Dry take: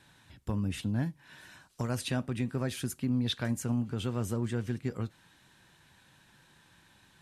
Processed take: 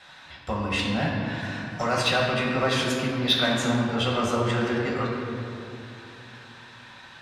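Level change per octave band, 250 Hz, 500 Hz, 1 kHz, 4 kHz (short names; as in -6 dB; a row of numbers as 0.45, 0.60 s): +5.5, +13.0, +17.5, +14.5 dB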